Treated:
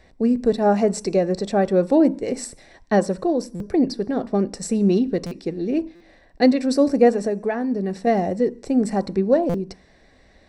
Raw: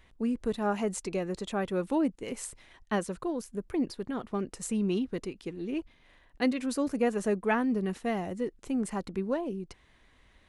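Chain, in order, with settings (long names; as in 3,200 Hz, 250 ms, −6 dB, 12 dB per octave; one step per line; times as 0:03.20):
0:07.11–0:08.07: downward compressor 5 to 1, threshold −32 dBFS, peak gain reduction 9.5 dB
convolution reverb RT60 0.50 s, pre-delay 3 ms, DRR 15.5 dB
buffer that repeats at 0:03.55/0:05.26/0:05.95/0:09.49, samples 256, times 8
level +3 dB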